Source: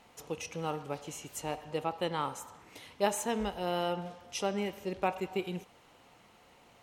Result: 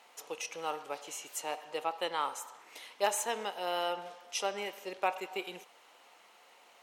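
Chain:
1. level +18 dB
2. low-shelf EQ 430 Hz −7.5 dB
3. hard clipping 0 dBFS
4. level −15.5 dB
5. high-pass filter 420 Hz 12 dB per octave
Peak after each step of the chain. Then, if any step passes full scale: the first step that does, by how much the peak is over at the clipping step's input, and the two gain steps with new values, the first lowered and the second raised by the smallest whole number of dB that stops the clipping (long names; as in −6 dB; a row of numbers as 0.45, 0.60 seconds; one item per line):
+4.5, +3.5, 0.0, −15.5, −17.0 dBFS
step 1, 3.5 dB
step 1 +14 dB, step 4 −11.5 dB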